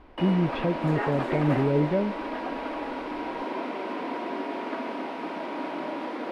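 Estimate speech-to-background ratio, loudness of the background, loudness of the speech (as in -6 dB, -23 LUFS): 6.0 dB, -32.5 LUFS, -26.5 LUFS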